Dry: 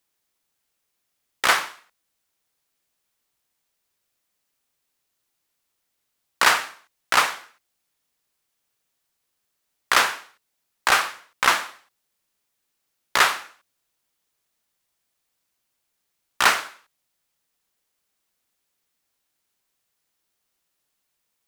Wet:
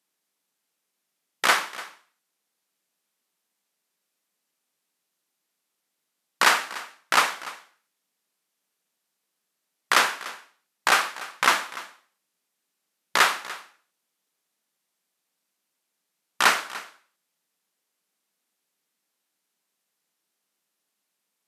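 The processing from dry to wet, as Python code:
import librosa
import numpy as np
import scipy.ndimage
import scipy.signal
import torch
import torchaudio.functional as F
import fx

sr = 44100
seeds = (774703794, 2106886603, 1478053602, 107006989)

y = fx.brickwall_bandpass(x, sr, low_hz=150.0, high_hz=14000.0)
y = fx.low_shelf(y, sr, hz=260.0, db=4.0)
y = y + 10.0 ** (-17.5 / 20.0) * np.pad(y, (int(294 * sr / 1000.0), 0))[:len(y)]
y = y * librosa.db_to_amplitude(-1.5)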